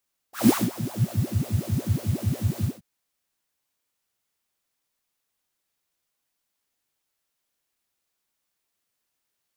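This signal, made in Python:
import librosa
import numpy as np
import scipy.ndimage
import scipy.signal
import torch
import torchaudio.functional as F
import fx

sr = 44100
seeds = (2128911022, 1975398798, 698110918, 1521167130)

y = fx.sub_patch_wobble(sr, seeds[0], note=46, wave='triangle', wave2='triangle', interval_st=12, level2_db=-9.0, sub_db=-13.0, noise_db=-9.5, kind='highpass', cutoff_hz=220.0, q=8.8, env_oct=1.5, env_decay_s=0.91, env_sustain_pct=5, attack_ms=163.0, decay_s=0.2, sustain_db=-15, release_s=0.17, note_s=2.31, lfo_hz=5.5, wobble_oct=1.4)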